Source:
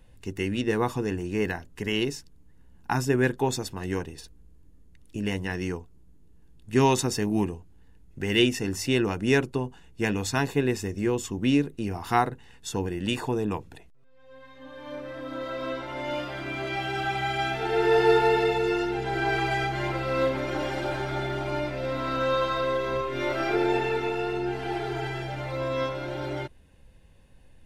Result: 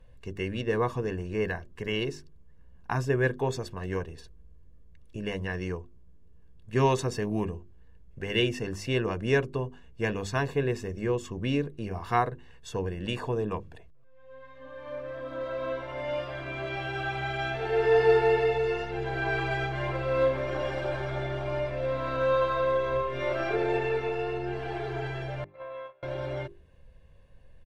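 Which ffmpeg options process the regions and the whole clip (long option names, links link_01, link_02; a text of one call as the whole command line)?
ffmpeg -i in.wav -filter_complex "[0:a]asettb=1/sr,asplit=3[link_01][link_02][link_03];[link_01]atrim=end=25.444[link_04];[link_02]atrim=start=25.44:end=26.03,asetpts=PTS-STARTPTS,afade=type=in:duration=0.004:curve=qsin,afade=type=out:start_time=0.586:duration=0.004:curve=qsin,agate=range=-26dB:threshold=-29dB:ratio=16:release=100:detection=peak,acrossover=split=460 3100:gain=0.126 1 0.141[link_05][link_06][link_07];[link_05][link_06][link_07]amix=inputs=3:normalize=0,acompressor=threshold=-36dB:ratio=12:attack=3.2:release=140:knee=1:detection=peak[link_08];[link_03]atrim=start=26.026[link_09];[link_04][link_08]acrossfade=duration=0.004:curve1=hsin:curve2=qsin[link_10];[link_10][link_09]acrossfade=duration=0.004:curve1=qsin:curve2=hsin,lowpass=frequency=2300:poles=1,bandreject=frequency=50:width_type=h:width=6,bandreject=frequency=100:width_type=h:width=6,bandreject=frequency=150:width_type=h:width=6,bandreject=frequency=200:width_type=h:width=6,bandreject=frequency=250:width_type=h:width=6,bandreject=frequency=300:width_type=h:width=6,bandreject=frequency=350:width_type=h:width=6,bandreject=frequency=400:width_type=h:width=6,aecho=1:1:1.8:0.47,volume=-1.5dB" out.wav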